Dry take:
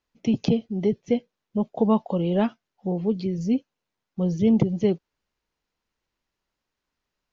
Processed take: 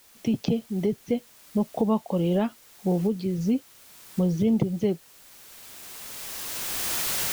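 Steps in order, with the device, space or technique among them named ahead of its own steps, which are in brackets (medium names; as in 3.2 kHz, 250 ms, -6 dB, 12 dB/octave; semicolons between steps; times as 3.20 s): cheap recorder with automatic gain (white noise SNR 27 dB; recorder AGC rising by 14 dB/s); trim -3.5 dB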